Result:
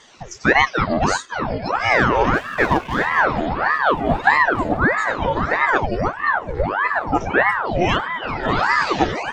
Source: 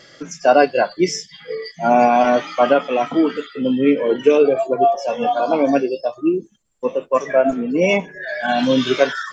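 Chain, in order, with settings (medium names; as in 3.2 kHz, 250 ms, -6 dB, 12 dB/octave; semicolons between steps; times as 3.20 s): 2.34–3.25 s: median filter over 15 samples; ever faster or slower copies 197 ms, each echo -7 st, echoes 3, each echo -6 dB; ring modulator with a swept carrier 840 Hz, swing 80%, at 1.6 Hz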